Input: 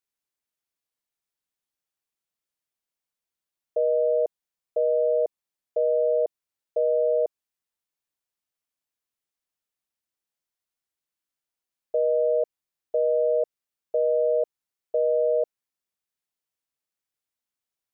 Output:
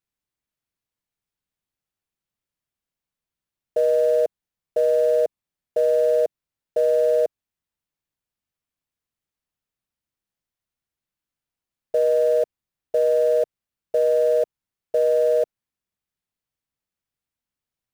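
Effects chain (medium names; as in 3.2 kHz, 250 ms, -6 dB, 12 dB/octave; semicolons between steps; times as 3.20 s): tone controls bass +10 dB, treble -4 dB; in parallel at -10.5 dB: companded quantiser 4-bit; on the sum: trim +1 dB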